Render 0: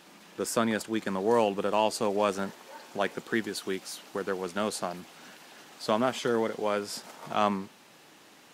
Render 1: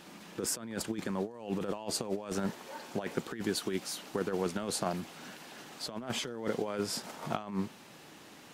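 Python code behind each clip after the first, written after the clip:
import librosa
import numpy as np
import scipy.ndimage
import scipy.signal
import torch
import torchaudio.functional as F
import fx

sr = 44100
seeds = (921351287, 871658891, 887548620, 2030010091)

y = fx.low_shelf(x, sr, hz=220.0, db=8.5)
y = fx.over_compress(y, sr, threshold_db=-30.0, ratio=-0.5)
y = y * librosa.db_to_amplitude(-3.5)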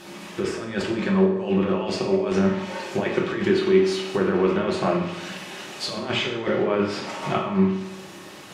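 y = fx.env_lowpass_down(x, sr, base_hz=2400.0, full_db=-30.0)
y = fx.dynamic_eq(y, sr, hz=2500.0, q=1.4, threshold_db=-58.0, ratio=4.0, max_db=7)
y = fx.rev_fdn(y, sr, rt60_s=0.86, lf_ratio=0.95, hf_ratio=0.75, size_ms=16.0, drr_db=-2.5)
y = y * librosa.db_to_amplitude(6.5)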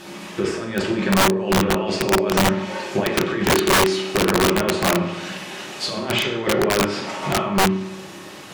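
y = (np.mod(10.0 ** (14.0 / 20.0) * x + 1.0, 2.0) - 1.0) / 10.0 ** (14.0 / 20.0)
y = y * librosa.db_to_amplitude(3.5)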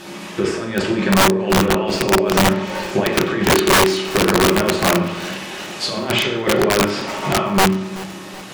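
y = fx.echo_feedback(x, sr, ms=378, feedback_pct=50, wet_db=-19.5)
y = y * librosa.db_to_amplitude(3.0)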